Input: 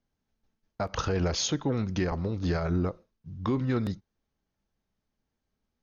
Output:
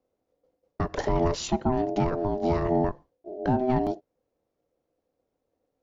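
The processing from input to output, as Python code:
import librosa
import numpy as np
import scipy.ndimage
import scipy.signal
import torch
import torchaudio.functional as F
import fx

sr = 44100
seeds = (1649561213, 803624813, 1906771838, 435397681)

y = x * np.sin(2.0 * np.pi * 510.0 * np.arange(len(x)) / sr)
y = fx.tilt_shelf(y, sr, db=6.0, hz=750.0)
y = y * 10.0 ** (3.5 / 20.0)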